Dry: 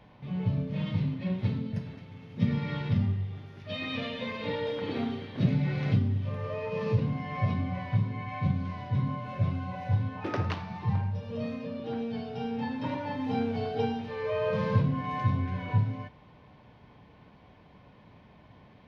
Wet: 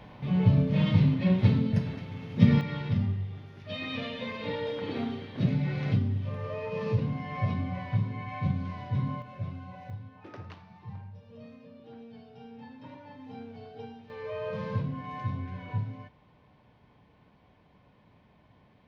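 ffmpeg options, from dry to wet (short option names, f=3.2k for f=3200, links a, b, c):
-af "asetnsamples=n=441:p=0,asendcmd='2.61 volume volume -1dB;9.22 volume volume -8dB;9.9 volume volume -14dB;14.1 volume volume -6dB',volume=7dB"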